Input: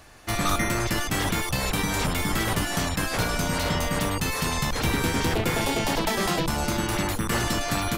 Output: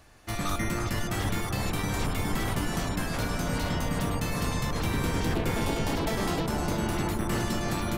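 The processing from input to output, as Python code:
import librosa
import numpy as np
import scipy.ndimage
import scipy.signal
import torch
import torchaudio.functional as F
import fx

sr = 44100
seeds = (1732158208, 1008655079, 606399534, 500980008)

y = fx.low_shelf(x, sr, hz=340.0, db=4.0)
y = fx.echo_wet_lowpass(y, sr, ms=330, feedback_pct=74, hz=1300.0, wet_db=-4.0)
y = y * 10.0 ** (-7.5 / 20.0)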